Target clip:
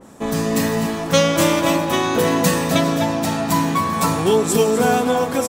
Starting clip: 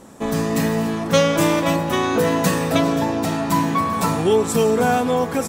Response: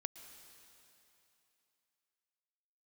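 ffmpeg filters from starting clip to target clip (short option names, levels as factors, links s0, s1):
-filter_complex "[0:a]asplit=2[s0][s1];[s1]adelay=250.7,volume=0.447,highshelf=f=4000:g=-5.64[s2];[s0][s2]amix=inputs=2:normalize=0,adynamicequalizer=threshold=0.0224:dfrequency=2700:dqfactor=0.7:tfrequency=2700:tqfactor=0.7:attack=5:release=100:ratio=0.375:range=2:mode=boostabove:tftype=highshelf"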